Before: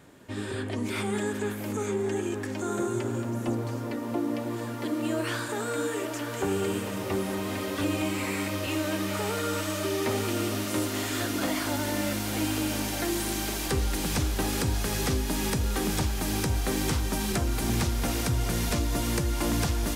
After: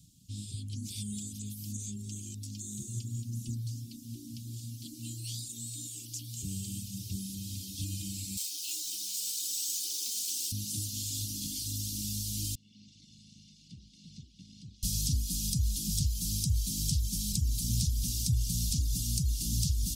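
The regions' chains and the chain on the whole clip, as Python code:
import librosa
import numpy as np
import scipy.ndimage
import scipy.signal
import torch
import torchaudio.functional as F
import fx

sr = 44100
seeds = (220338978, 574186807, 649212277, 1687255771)

y = fx.chain(x, sr, fx.highpass(hz=390.0, slope=24),
    fx.high_shelf(hz=3800.0, db=8.0),
    fx.resample_bad(factor=2, down='filtered', up='hold'), at=(8.37, 10.52))
y = fx.chain(y, sr, fx.lower_of_two(delay_ms=1.4),
    fx.highpass(hz=310.0, slope=12),
    fx.spacing_loss(db_at_10k=40), at=(12.55, 14.83))
y = fx.dereverb_blind(y, sr, rt60_s=0.59)
y = scipy.signal.sosfilt(scipy.signal.cheby2(4, 70, [570.0, 1700.0], 'bandstop', fs=sr, output='sos'), y)
y = fx.peak_eq(y, sr, hz=2800.0, db=13.5, octaves=1.5)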